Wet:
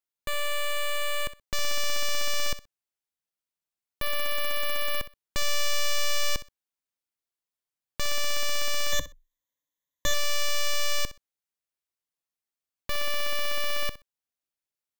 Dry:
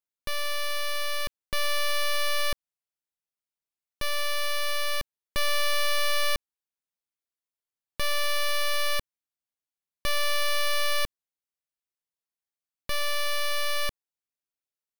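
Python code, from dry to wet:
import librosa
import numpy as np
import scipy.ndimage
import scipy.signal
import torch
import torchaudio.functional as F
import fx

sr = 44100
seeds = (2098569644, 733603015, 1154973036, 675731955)

p1 = fx.tracing_dist(x, sr, depth_ms=0.19)
p2 = fx.ripple_eq(p1, sr, per_octave=1.1, db=15, at=(8.92, 10.14))
y = p2 + fx.echo_feedback(p2, sr, ms=63, feedback_pct=17, wet_db=-15, dry=0)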